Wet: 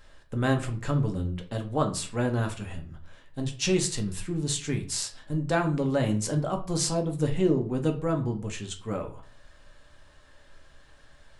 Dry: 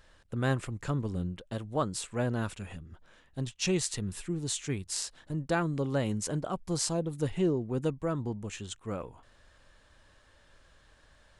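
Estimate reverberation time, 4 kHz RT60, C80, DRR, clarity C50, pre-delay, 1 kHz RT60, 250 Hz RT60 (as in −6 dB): 0.40 s, 0.30 s, 17.0 dB, 3.5 dB, 12.5 dB, 4 ms, 0.40 s, 0.45 s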